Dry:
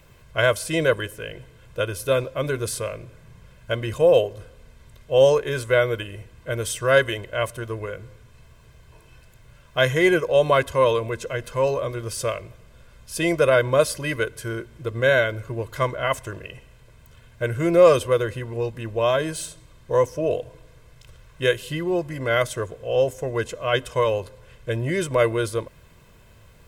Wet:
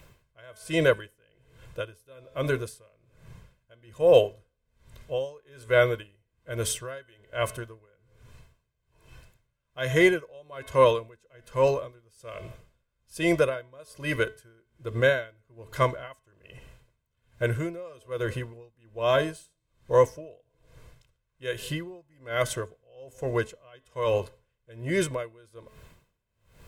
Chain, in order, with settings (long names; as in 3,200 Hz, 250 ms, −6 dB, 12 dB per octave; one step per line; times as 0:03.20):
hum removal 216.8 Hz, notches 20
tremolo with a sine in dB 1.2 Hz, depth 31 dB